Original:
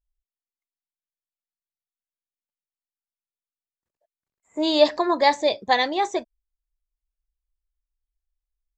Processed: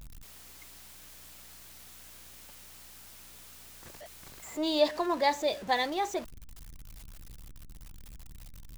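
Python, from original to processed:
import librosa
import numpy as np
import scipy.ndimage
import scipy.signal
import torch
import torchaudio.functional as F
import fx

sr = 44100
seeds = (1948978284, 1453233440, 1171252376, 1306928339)

y = x + 0.5 * 10.0 ** (-30.5 / 20.0) * np.sign(x)
y = fx.add_hum(y, sr, base_hz=60, snr_db=27)
y = y * librosa.db_to_amplitude(-9.0)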